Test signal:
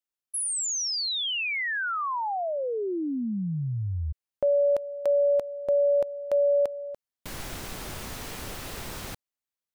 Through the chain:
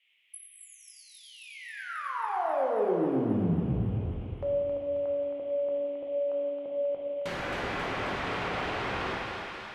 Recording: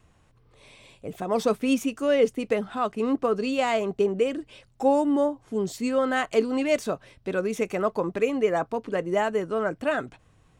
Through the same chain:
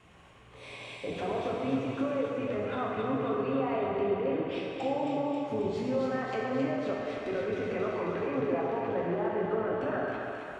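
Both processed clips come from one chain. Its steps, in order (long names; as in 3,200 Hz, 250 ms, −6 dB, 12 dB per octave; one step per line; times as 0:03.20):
sub-octave generator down 1 octave, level −4 dB
high-pass filter 99 Hz 6 dB per octave
bass and treble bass −7 dB, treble −8 dB
downward compressor 4 to 1, threshold −35 dBFS
brickwall limiter −32.5 dBFS
treble cut that deepens with the level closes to 720 Hz, closed at −34 dBFS
noise in a band 2,000–3,300 Hz −78 dBFS
on a send: feedback echo with a high-pass in the loop 269 ms, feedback 71%, high-pass 740 Hz, level −4 dB
on the sum: dense smooth reverb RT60 2.2 s, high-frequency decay 0.85×, DRR −3.5 dB
level +5 dB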